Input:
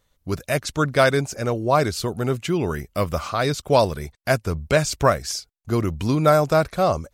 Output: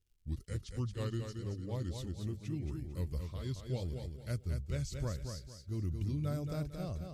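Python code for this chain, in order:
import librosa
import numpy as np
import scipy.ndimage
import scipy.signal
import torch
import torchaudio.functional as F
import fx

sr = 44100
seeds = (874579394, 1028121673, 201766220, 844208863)

p1 = fx.pitch_glide(x, sr, semitones=-4.0, runs='ending unshifted')
p2 = fx.dmg_crackle(p1, sr, seeds[0], per_s=100.0, level_db=-46.0)
p3 = fx.tone_stack(p2, sr, knobs='10-0-1')
p4 = p3 + fx.echo_feedback(p3, sr, ms=225, feedback_pct=31, wet_db=-6.0, dry=0)
y = p4 * librosa.db_to_amplitude(1.0)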